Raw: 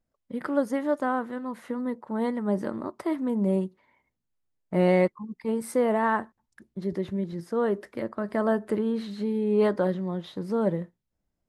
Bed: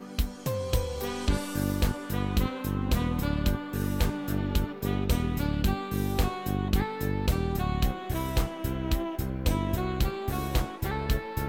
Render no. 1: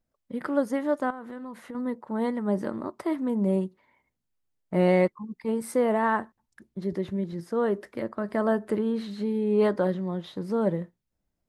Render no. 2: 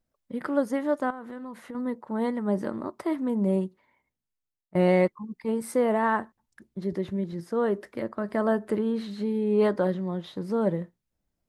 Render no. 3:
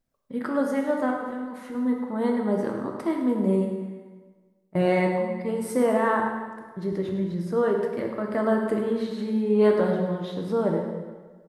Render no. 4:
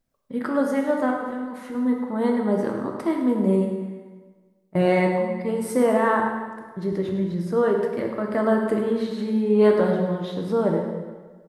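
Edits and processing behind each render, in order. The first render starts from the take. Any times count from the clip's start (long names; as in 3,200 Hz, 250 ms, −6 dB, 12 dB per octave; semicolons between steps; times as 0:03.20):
0:01.10–0:01.75: downward compressor, threshold −35 dBFS
0:03.63–0:04.75: fade out, to −22 dB
repeating echo 104 ms, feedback 48%, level −12.5 dB; dense smooth reverb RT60 1.4 s, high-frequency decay 0.75×, DRR 1.5 dB
level +2.5 dB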